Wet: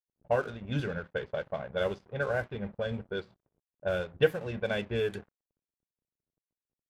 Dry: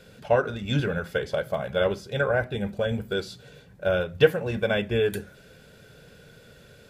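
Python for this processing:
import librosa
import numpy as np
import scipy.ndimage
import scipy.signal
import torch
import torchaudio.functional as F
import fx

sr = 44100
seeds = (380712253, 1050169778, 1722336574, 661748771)

y = np.sign(x) * np.maximum(np.abs(x) - 10.0 ** (-42.5 / 20.0), 0.0)
y = fx.env_lowpass(y, sr, base_hz=370.0, full_db=-19.5)
y = F.gain(torch.from_numpy(y), -6.0).numpy()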